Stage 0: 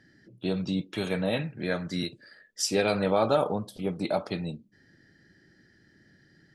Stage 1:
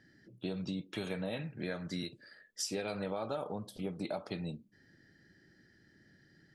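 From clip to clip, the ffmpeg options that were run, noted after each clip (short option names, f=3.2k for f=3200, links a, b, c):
-af "acompressor=threshold=-30dB:ratio=6,volume=-4dB"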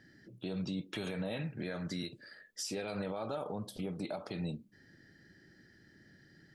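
-af "alimiter=level_in=8dB:limit=-24dB:level=0:latency=1:release=59,volume=-8dB,volume=3dB"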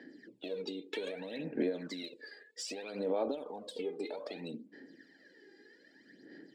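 -af "highpass=f=260:w=0.5412,highpass=f=260:w=1.3066,equalizer=f=270:t=q:w=4:g=7,equalizer=f=470:t=q:w=4:g=7,equalizer=f=1.3k:t=q:w=4:g=-10,equalizer=f=6k:t=q:w=4:g=-9,lowpass=f=7.6k:w=0.5412,lowpass=f=7.6k:w=1.3066,acompressor=threshold=-38dB:ratio=6,aphaser=in_gain=1:out_gain=1:delay=2.5:decay=0.68:speed=0.63:type=sinusoidal,volume=1dB"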